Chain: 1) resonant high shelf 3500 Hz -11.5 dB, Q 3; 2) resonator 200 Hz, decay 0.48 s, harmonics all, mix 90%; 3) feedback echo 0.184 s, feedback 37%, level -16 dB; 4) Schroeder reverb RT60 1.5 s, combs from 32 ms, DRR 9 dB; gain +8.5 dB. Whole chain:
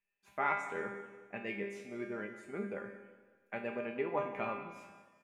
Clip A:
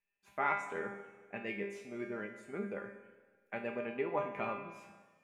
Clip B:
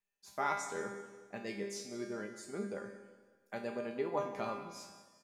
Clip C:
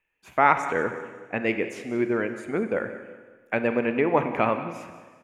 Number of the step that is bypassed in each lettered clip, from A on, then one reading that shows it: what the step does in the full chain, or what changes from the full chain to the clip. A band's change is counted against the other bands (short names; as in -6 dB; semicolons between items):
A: 3, momentary loudness spread change +1 LU; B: 1, 4 kHz band +7.0 dB; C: 2, 250 Hz band +2.0 dB